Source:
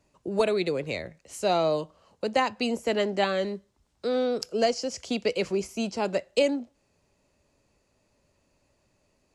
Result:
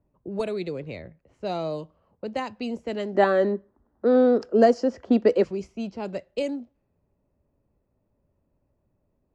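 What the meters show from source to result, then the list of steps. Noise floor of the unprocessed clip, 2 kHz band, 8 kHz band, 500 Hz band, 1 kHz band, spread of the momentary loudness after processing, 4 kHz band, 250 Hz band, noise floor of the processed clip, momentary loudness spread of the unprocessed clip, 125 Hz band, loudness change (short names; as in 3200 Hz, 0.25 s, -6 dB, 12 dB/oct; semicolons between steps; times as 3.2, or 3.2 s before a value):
-71 dBFS, -1.5 dB, under -10 dB, +3.0 dB, +1.0 dB, 16 LU, -8.5 dB, +5.0 dB, -74 dBFS, 9 LU, n/a, +3.0 dB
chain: low-pass opened by the level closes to 1200 Hz, open at -19.5 dBFS; spectral gain 3.15–5.44, 210–2000 Hz +12 dB; low shelf 360 Hz +9.5 dB; gain -8 dB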